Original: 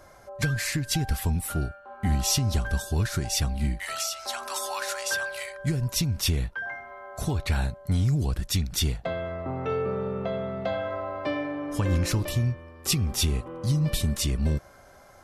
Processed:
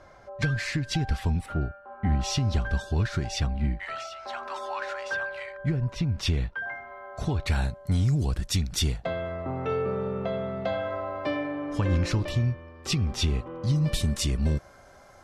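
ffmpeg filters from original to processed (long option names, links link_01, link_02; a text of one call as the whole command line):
ffmpeg -i in.wav -af "asetnsamples=nb_out_samples=441:pad=0,asendcmd='1.46 lowpass f 2000;2.21 lowpass f 4000;3.47 lowpass f 2300;6.18 lowpass f 4300;7.46 lowpass f 9400;11.36 lowpass f 4800;13.76 lowpass f 9000',lowpass=4400" out.wav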